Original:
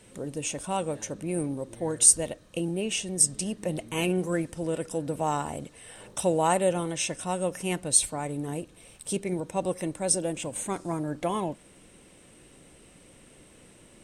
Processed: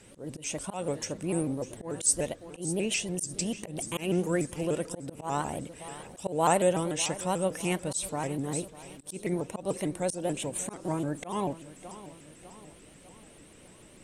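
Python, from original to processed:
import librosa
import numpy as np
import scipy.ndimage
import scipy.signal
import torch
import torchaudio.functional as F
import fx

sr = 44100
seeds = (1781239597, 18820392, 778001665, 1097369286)

y = fx.echo_feedback(x, sr, ms=601, feedback_pct=49, wet_db=-17.0)
y = fx.auto_swell(y, sr, attack_ms=162.0)
y = fx.vibrato_shape(y, sr, shape='saw_up', rate_hz=6.8, depth_cents=160.0)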